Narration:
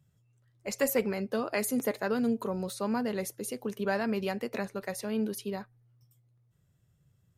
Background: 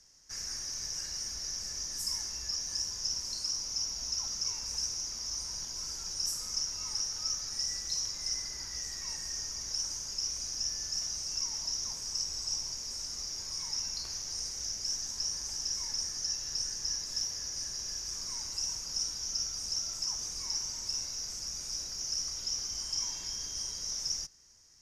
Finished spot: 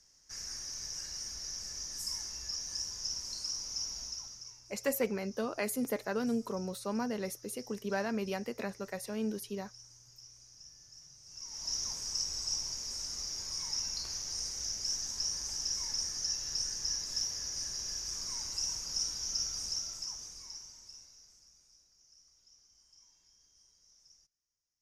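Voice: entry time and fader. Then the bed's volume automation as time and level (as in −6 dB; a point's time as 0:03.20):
4.05 s, −4.0 dB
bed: 0:03.98 −3.5 dB
0:04.67 −20 dB
0:11.20 −20 dB
0:11.73 −0.5 dB
0:19.61 −0.5 dB
0:21.87 −28.5 dB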